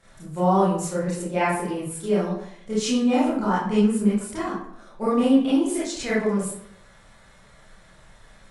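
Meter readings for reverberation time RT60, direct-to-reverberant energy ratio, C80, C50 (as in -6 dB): 0.70 s, -10.0 dB, 6.0 dB, -0.5 dB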